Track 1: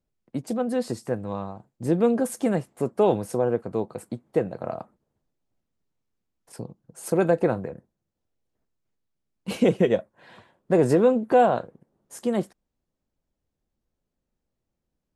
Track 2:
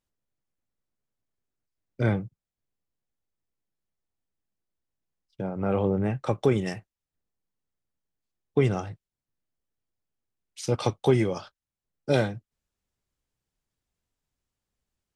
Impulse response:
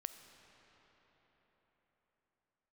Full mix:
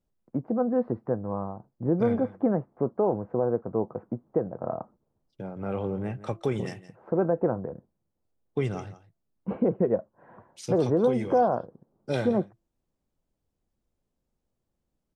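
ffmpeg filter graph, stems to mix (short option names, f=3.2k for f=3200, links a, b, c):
-filter_complex "[0:a]lowpass=f=1.3k:w=0.5412,lowpass=f=1.3k:w=1.3066,volume=0.5dB[a];[1:a]bandreject=f=336.4:t=h:w=4,bandreject=f=672.8:t=h:w=4,volume=-5.5dB,asplit=2[b][c];[c]volume=-16dB,aecho=0:1:169:1[d];[a][b][d]amix=inputs=3:normalize=0,alimiter=limit=-14dB:level=0:latency=1:release=362"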